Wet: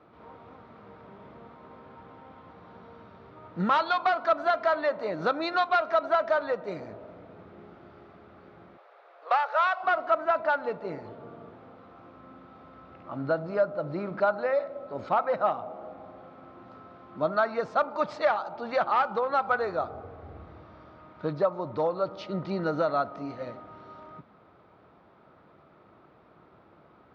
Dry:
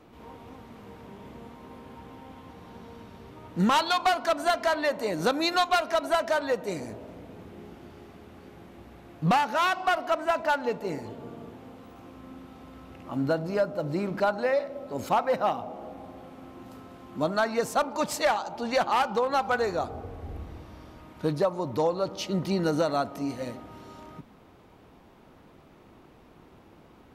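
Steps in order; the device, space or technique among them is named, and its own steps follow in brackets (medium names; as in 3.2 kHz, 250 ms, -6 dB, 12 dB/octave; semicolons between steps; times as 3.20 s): 8.77–9.83 s: steep high-pass 450 Hz 48 dB/octave; guitar cabinet (cabinet simulation 91–4300 Hz, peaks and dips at 250 Hz -5 dB, 620 Hz +5 dB, 1.3 kHz +9 dB, 2.9 kHz -5 dB); treble shelf 4.9 kHz -5 dB; trim -3.5 dB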